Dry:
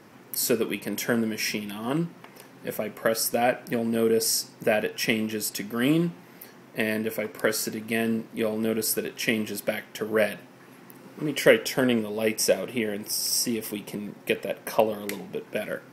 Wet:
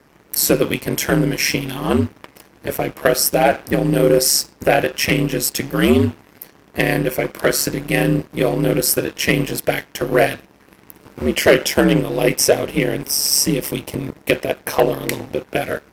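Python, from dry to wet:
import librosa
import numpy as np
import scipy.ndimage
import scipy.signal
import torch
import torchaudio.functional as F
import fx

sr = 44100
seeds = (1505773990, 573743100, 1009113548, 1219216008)

y = fx.leveller(x, sr, passes=2)
y = y * np.sin(2.0 * np.pi * 71.0 * np.arange(len(y)) / sr)
y = y * librosa.db_to_amplitude(5.0)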